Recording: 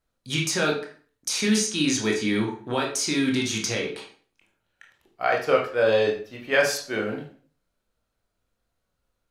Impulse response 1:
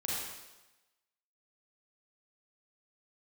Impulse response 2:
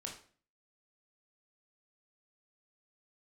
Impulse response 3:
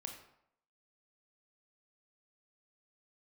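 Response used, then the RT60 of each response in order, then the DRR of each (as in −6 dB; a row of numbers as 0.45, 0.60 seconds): 2; 1.1, 0.45, 0.75 seconds; −6.0, −0.5, 3.0 decibels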